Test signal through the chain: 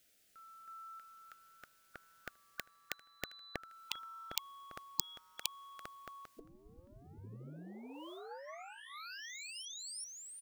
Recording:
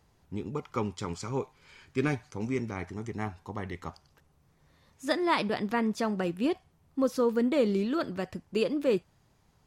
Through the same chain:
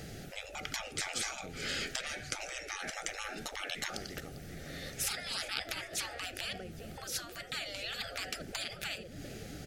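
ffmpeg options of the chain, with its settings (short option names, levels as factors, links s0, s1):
-filter_complex "[0:a]acontrast=74,asuperstop=centerf=1000:order=4:qfactor=1.6,acompressor=threshold=0.0224:ratio=16,asplit=2[s0][s1];[s1]aecho=0:1:398|796:0.0631|0.024[s2];[s0][s2]amix=inputs=2:normalize=0,afftfilt=real='re*lt(hypot(re,im),0.01)':imag='im*lt(hypot(re,im),0.01)':win_size=1024:overlap=0.75,volume=6.31"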